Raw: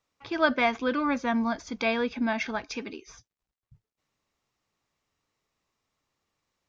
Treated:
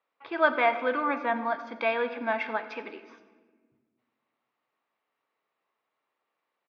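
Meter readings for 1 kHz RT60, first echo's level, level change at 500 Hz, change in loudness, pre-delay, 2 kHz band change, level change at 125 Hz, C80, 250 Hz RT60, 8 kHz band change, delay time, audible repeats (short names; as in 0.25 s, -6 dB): 1.3 s, -19.5 dB, +1.5 dB, 0.0 dB, 4 ms, +0.5 dB, under -10 dB, 12.0 dB, 2.2 s, n/a, 91 ms, 2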